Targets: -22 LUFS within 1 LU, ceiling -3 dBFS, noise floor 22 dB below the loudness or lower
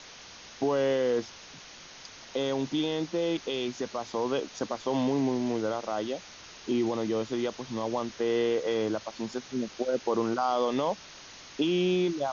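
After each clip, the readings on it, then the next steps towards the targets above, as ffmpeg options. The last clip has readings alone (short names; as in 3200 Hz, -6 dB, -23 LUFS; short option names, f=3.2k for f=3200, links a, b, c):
noise floor -48 dBFS; noise floor target -52 dBFS; loudness -30.0 LUFS; peak -15.5 dBFS; loudness target -22.0 LUFS
-> -af "afftdn=nr=6:nf=-48"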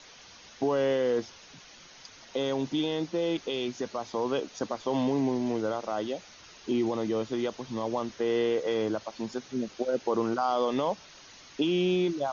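noise floor -52 dBFS; loudness -30.0 LUFS; peak -15.5 dBFS; loudness target -22.0 LUFS
-> -af "volume=8dB"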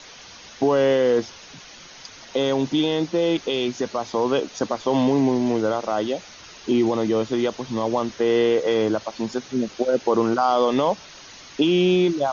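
loudness -22.0 LUFS; peak -7.5 dBFS; noise floor -44 dBFS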